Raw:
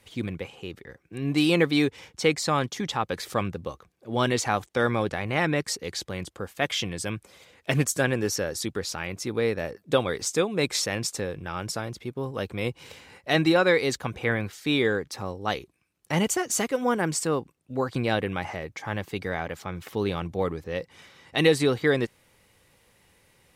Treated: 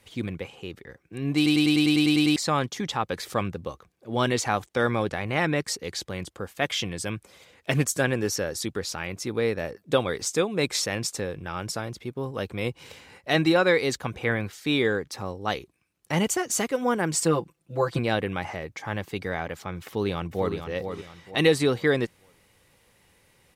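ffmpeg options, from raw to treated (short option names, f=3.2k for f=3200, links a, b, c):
-filter_complex "[0:a]asettb=1/sr,asplit=3[a][b][c];[a]atrim=end=17.134[d];[b]atrim=start=17.13:end=17.99,asetpts=PTS-STARTPTS,afade=t=in:d=0.004:c=qsin,afade=t=out:st=0.856:d=0.004:c=qsin,aecho=1:1:5.9:0.93,atrim=end_sample=37926[e];[c]atrim=start=17.986[f];[d][e]acrossfade=d=0.004:c1=hsin:c2=qsin[g];[g][f]acrossfade=d=0.004:c1=qsin:c2=hsin,asplit=2[h][i];[i]afade=t=in:st=19.85:d=0.01,afade=t=out:st=20.55:d=0.01,aecho=0:1:460|920|1380|1840:0.421697|0.147594|0.0516578|0.0180802[j];[h][j]amix=inputs=2:normalize=0,asplit=11[k][l][m][n][o][p][q][r][s][t][u];[k]atrim=end=1.462[v];[l]atrim=start=1.358:end=1.462[w];[m]atrim=start=1.358:end=1.462[x];[n]atrim=start=1.358:end=1.462[y];[o]atrim=start=1.358:end=1.462[z];[p]atrim=start=1.358:end=1.462[aa];[q]atrim=start=1.358:end=1.462[ab];[r]atrim=start=1.358:end=1.462[ac];[s]atrim=start=1.358:end=1.462[ad];[t]atrim=start=1.358:end=1.462[ae];[u]atrim=start=2.358[af];[v][w]acrossfade=d=0.004:c1=hsin:c2=hsin[ag];[ag][x]acrossfade=d=0.004:c1=hsin:c2=hsin[ah];[ah][y]acrossfade=d=0.004:c1=hsin:c2=hsin[ai];[ai][z]acrossfade=d=0.004:c1=hsin:c2=hsin[aj];[aj][aa]acrossfade=d=0.004:c1=hsin:c2=hsin[ak];[ak][ab]acrossfade=d=0.004:c1=hsin:c2=hsin[al];[al][ac]acrossfade=d=0.004:c1=hsin:c2=hsin[am];[am][ad]acrossfade=d=0.004:c1=hsin:c2=hsin[an];[an][ae]acrossfade=d=0.004:c1=hsin:c2=hsin[ao];[ao][af]acrossfade=d=0.004:c1=hsin:c2=hsin"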